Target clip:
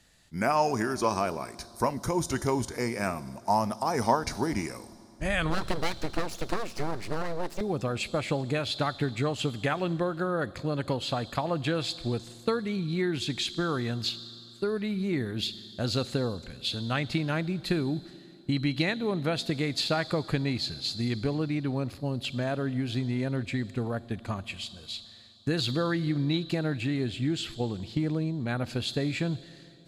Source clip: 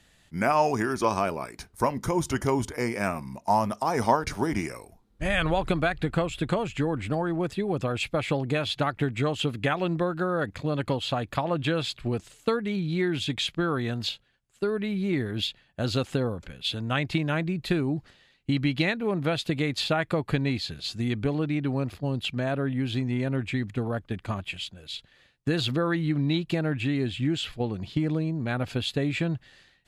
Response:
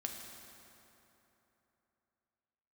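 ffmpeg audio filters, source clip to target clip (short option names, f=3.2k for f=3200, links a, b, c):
-filter_complex "[0:a]asettb=1/sr,asplit=3[a][b][c];[a]atrim=end=5.504[d];[b]atrim=start=5.5:end=7.61,asetpts=PTS-STARTPTS,afade=t=in:d=0.004:c=qsin,afade=t=out:st=2.106:d=0.004:c=qsin,aeval=exprs='abs(val(0))':c=same[e];[c]atrim=start=7.606[f];[d][e]acrossfade=d=0.004:c1=hsin:c2=qsin[g];[g][f]acrossfade=d=0.004:c1=qsin:c2=hsin,asplit=2[h][i];[i]highshelf=f=3.1k:t=q:w=3:g=9.5[j];[1:a]atrim=start_sample=2205[k];[j][k]afir=irnorm=-1:irlink=0,volume=-12.5dB[l];[h][l]amix=inputs=2:normalize=0,volume=-3.5dB"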